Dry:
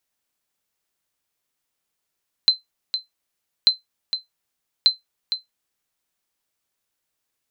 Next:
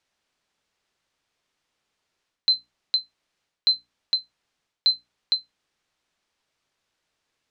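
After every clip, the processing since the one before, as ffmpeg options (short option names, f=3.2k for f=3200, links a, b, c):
-af "lowpass=5.1k,bandreject=f=60:t=h:w=6,bandreject=f=120:t=h:w=6,bandreject=f=180:t=h:w=6,bandreject=f=240:t=h:w=6,bandreject=f=300:t=h:w=6,areverse,acompressor=threshold=-25dB:ratio=10,areverse,volume=7dB"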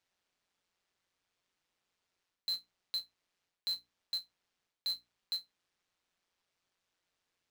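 -af "alimiter=limit=-23dB:level=0:latency=1:release=24,tremolo=f=180:d=0.621,acrusher=bits=3:mode=log:mix=0:aa=0.000001,volume=-4dB"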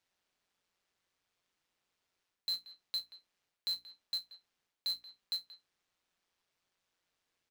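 -filter_complex "[0:a]asplit=2[a][b];[b]adelay=180,highpass=300,lowpass=3.4k,asoftclip=type=hard:threshold=-34.5dB,volume=-13dB[c];[a][c]amix=inputs=2:normalize=0"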